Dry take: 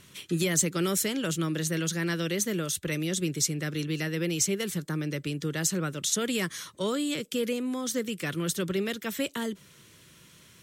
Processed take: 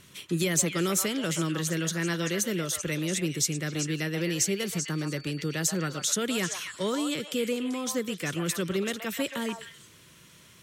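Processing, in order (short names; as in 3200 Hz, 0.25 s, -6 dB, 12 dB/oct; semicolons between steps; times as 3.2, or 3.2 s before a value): delay with a stepping band-pass 0.129 s, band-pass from 910 Hz, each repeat 1.4 oct, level -1.5 dB; 4.2–6.06 whine 4500 Hz -49 dBFS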